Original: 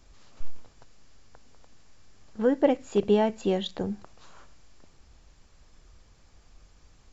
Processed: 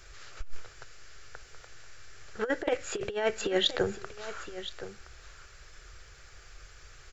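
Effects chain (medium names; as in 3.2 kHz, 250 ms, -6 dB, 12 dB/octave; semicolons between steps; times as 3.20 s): FFT filter 130 Hz 0 dB, 250 Hz -18 dB, 370 Hz +4 dB, 1 kHz -2 dB, 1.4 kHz +13 dB, 3.3 kHz +6 dB; compressor with a negative ratio -25 dBFS, ratio -0.5; delay 1019 ms -13.5 dB; 2.61–3.08 s: loudspeaker Doppler distortion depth 0.1 ms; trim -1.5 dB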